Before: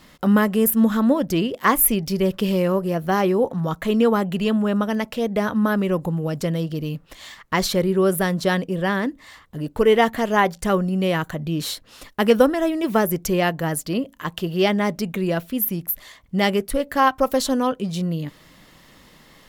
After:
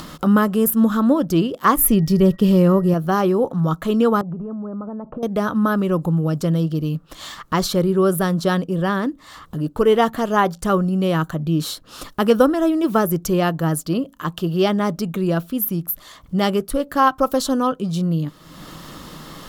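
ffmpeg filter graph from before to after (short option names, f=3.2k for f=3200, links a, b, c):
-filter_complex "[0:a]asettb=1/sr,asplit=3[a][b][c];[a]atrim=end=1.764[d];[b]atrim=start=1.76:end=2.94,asetpts=PTS-STARTPTS,afade=t=in:d=0.004:c=qsin,afade=t=out:st=1.176:d=0.004:c=qsin,lowshelf=f=280:g=8,agate=range=-33dB:threshold=-27dB:ratio=3:release=100:detection=peak,aeval=exprs='val(0)+0.00501*sin(2*PI*1900*n/s)':c=same[e];[c]atrim=start=2.936[f];[d][e]acrossfade=d=0.004:c1=hsin:c2=qsin[g];[g][f]acrossfade=d=0.004:c1=qsin:c2=hsin,asettb=1/sr,asplit=3[h][i][j];[h]atrim=end=4.214[k];[i]atrim=start=4.21:end=5.23,asetpts=PTS-STARTPTS,afade=t=in:d=0.004:c=qsin,afade=t=out:st=1.016:d=0.004:c=qsin,lowpass=f=1.1k:w=0.5412,lowpass=f=1.1k:w=1.3066,acompressor=threshold=-28dB:ratio=10:attack=3.2:release=140:knee=1:detection=peak[l];[j]atrim=start=5.226[m];[k][l]acrossfade=d=0.004:c1=hsin:c2=qsin[n];[n][m]acrossfade=d=0.004:c1=qsin:c2=hsin,equalizer=f=160:t=o:w=0.33:g=6,equalizer=f=315:t=o:w=0.33:g=5,equalizer=f=1.25k:t=o:w=0.33:g=7,equalizer=f=2k:t=o:w=0.33:g=-8,acompressor=mode=upward:threshold=-25dB:ratio=2.5,equalizer=f=2.5k:t=o:w=0.32:g=-3.5"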